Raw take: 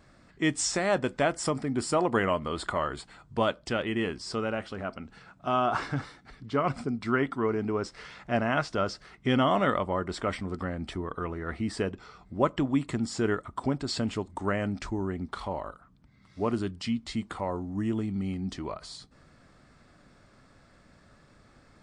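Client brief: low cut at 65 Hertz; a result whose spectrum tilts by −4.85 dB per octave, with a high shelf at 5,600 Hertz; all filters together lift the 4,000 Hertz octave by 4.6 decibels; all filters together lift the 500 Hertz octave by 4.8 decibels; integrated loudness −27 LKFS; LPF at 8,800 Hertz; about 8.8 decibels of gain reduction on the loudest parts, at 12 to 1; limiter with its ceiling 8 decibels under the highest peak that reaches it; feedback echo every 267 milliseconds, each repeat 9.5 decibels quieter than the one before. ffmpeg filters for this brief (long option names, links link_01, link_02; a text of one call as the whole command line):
ffmpeg -i in.wav -af "highpass=65,lowpass=8800,equalizer=frequency=500:width_type=o:gain=6,equalizer=frequency=4000:width_type=o:gain=8,highshelf=frequency=5600:gain=-4,acompressor=threshold=-24dB:ratio=12,alimiter=limit=-20.5dB:level=0:latency=1,aecho=1:1:267|534|801|1068:0.335|0.111|0.0365|0.012,volume=6dB" out.wav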